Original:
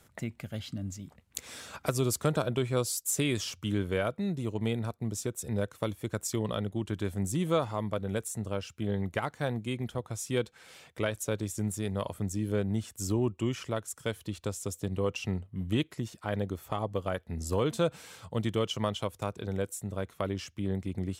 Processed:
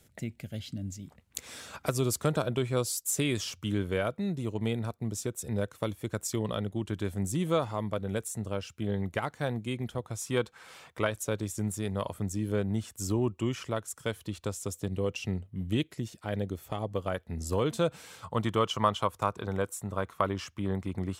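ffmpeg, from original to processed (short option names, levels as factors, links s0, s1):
-af "asetnsamples=n=441:p=0,asendcmd='1.03 equalizer g 0;10.22 equalizer g 8.5;11.07 equalizer g 2;14.88 equalizer g -5.5;16.91 equalizer g 0.5;18.23 equalizer g 11.5',equalizer=f=1100:t=o:w=0.97:g=-11.5"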